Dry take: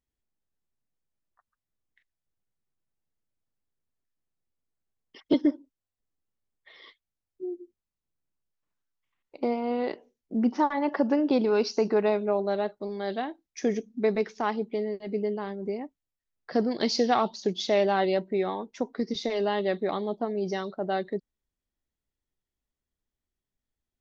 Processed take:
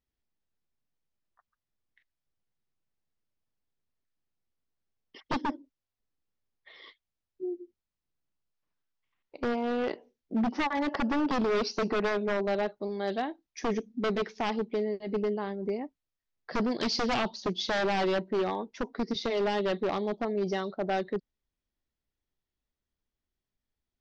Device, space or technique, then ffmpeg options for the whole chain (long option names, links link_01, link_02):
synthesiser wavefolder: -af "aeval=exprs='0.075*(abs(mod(val(0)/0.075+3,4)-2)-1)':channel_layout=same,lowpass=frequency=5900:width=0.5412,lowpass=frequency=5900:width=1.3066"